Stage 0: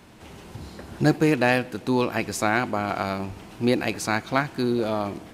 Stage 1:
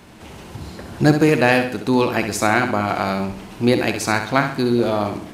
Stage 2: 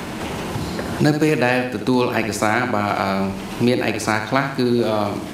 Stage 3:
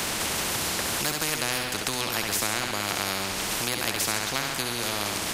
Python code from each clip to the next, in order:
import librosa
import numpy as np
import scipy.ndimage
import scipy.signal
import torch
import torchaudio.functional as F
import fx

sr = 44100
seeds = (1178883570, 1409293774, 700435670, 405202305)

y1 = fx.room_flutter(x, sr, wall_m=11.5, rt60_s=0.49)
y1 = F.gain(torch.from_numpy(y1), 5.0).numpy()
y2 = fx.band_squash(y1, sr, depth_pct=70)
y2 = F.gain(torch.from_numpy(y2), -1.0).numpy()
y3 = fx.spectral_comp(y2, sr, ratio=4.0)
y3 = F.gain(torch.from_numpy(y3), -7.0).numpy()